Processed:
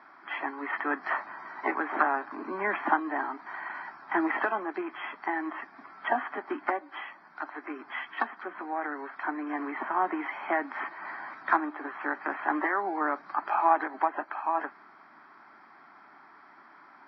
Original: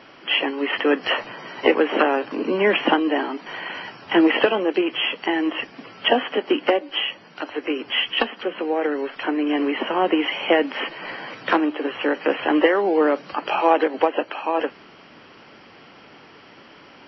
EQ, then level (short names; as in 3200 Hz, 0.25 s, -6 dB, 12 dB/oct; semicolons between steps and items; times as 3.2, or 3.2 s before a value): HPF 440 Hz 12 dB/oct; air absorption 320 m; fixed phaser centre 1200 Hz, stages 4; 0.0 dB